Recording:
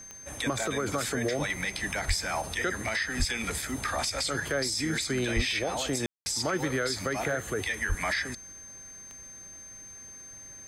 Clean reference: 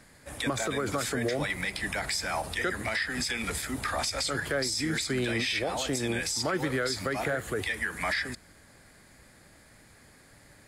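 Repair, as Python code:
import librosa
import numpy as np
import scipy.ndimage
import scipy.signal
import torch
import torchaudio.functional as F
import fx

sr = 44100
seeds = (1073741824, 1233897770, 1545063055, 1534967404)

y = fx.fix_declick_ar(x, sr, threshold=10.0)
y = fx.notch(y, sr, hz=6300.0, q=30.0)
y = fx.fix_deplosive(y, sr, at_s=(2.07, 3.18, 5.35, 7.88))
y = fx.fix_ambience(y, sr, seeds[0], print_start_s=9.95, print_end_s=10.45, start_s=6.06, end_s=6.26)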